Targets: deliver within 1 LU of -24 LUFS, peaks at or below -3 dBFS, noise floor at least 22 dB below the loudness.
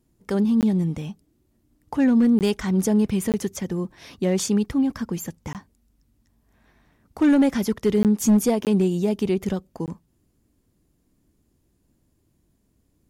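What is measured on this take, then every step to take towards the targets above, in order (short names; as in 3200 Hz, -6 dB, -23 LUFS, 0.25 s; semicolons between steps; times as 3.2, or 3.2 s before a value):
clipped 0.6%; flat tops at -12.0 dBFS; dropouts 7; longest dropout 18 ms; loudness -22.0 LUFS; peak -12.0 dBFS; loudness target -24.0 LUFS
-> clip repair -12 dBFS; interpolate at 0.61/2.39/3.32/5.53/8.03/8.65/9.86, 18 ms; gain -2 dB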